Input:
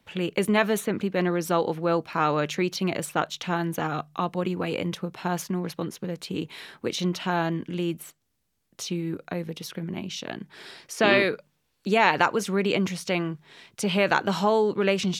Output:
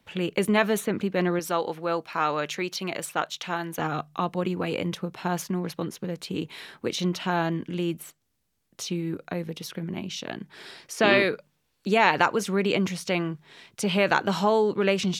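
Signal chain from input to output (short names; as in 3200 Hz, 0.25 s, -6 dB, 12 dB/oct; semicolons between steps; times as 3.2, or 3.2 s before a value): 1.39–3.79 low shelf 340 Hz -10.5 dB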